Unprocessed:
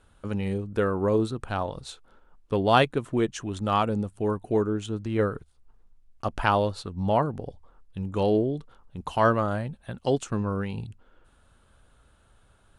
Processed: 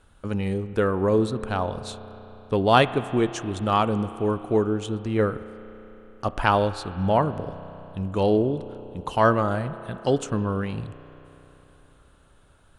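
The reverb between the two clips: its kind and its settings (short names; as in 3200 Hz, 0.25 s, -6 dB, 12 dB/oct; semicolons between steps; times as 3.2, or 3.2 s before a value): spring tank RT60 3.8 s, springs 32 ms, chirp 40 ms, DRR 13 dB; gain +2.5 dB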